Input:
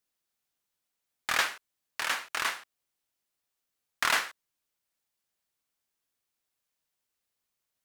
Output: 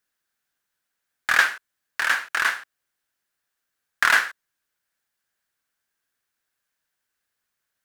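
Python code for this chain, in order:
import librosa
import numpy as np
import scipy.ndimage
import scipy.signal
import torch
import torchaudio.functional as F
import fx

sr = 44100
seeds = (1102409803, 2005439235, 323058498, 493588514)

y = fx.peak_eq(x, sr, hz=1600.0, db=11.5, octaves=0.52)
y = y * librosa.db_to_amplitude(2.5)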